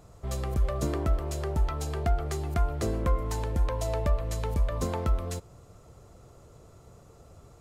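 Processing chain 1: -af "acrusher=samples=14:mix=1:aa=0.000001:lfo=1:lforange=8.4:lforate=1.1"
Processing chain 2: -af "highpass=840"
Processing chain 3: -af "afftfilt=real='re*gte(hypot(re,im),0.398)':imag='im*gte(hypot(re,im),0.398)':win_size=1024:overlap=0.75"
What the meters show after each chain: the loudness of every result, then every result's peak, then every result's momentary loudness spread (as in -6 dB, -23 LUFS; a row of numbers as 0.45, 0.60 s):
-30.5, -40.5, -34.0 LUFS; -16.0, -22.5, -17.0 dBFS; 3, 4, 6 LU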